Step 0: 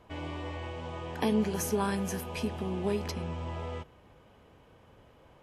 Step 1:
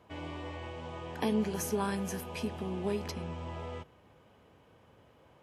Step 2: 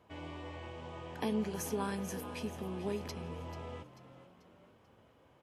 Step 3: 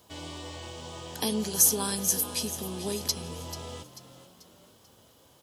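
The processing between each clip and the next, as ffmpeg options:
ffmpeg -i in.wav -af "highpass=73,volume=-2.5dB" out.wav
ffmpeg -i in.wav -filter_complex "[0:a]asplit=5[link_01][link_02][link_03][link_04][link_05];[link_02]adelay=439,afreqshift=47,volume=-13.5dB[link_06];[link_03]adelay=878,afreqshift=94,volume=-20.8dB[link_07];[link_04]adelay=1317,afreqshift=141,volume=-28.2dB[link_08];[link_05]adelay=1756,afreqshift=188,volume=-35.5dB[link_09];[link_01][link_06][link_07][link_08][link_09]amix=inputs=5:normalize=0,volume=-4dB" out.wav
ffmpeg -i in.wav -af "aexciter=amount=6:drive=6.6:freq=3400,volume=3.5dB" out.wav

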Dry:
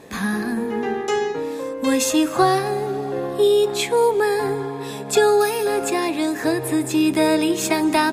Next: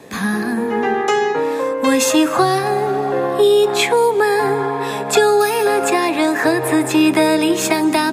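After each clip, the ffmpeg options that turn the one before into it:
ffmpeg -i in.wav -filter_complex "[0:a]acrossover=split=570|2300[link_01][link_02][link_03];[link_02]dynaudnorm=framelen=180:gausssize=9:maxgain=11.5dB[link_04];[link_01][link_04][link_03]amix=inputs=3:normalize=0,highpass=78,acrossover=split=350|3000[link_05][link_06][link_07];[link_06]acompressor=threshold=-19dB:ratio=6[link_08];[link_05][link_08][link_07]amix=inputs=3:normalize=0,volume=3.5dB" out.wav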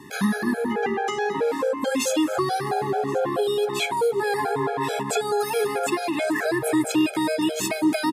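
ffmpeg -i in.wav -af "alimiter=limit=-11.5dB:level=0:latency=1:release=323,aecho=1:1:1076:0.0794,afftfilt=real='re*gt(sin(2*PI*4.6*pts/sr)*(1-2*mod(floor(b*sr/1024/430),2)),0)':imag='im*gt(sin(2*PI*4.6*pts/sr)*(1-2*mod(floor(b*sr/1024/430),2)),0)':win_size=1024:overlap=0.75" out.wav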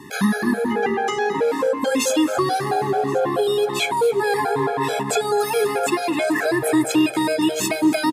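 ffmpeg -i in.wav -af "aecho=1:1:268|536|804:0.112|0.0494|0.0217,volume=3.5dB" out.wav

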